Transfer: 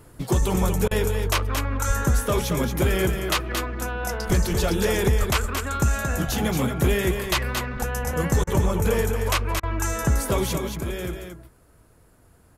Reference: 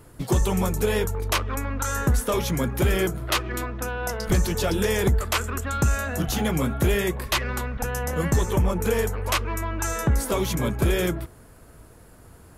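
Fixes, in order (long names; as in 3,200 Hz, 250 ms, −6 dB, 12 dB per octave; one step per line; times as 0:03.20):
0:01.87–0:01.99: high-pass filter 140 Hz 24 dB per octave
0:05.18–0:05.30: high-pass filter 140 Hz 24 dB per octave
repair the gap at 0:00.88/0:08.44/0:09.60, 30 ms
echo removal 226 ms −6.5 dB
level 0 dB, from 0:10.58 +8 dB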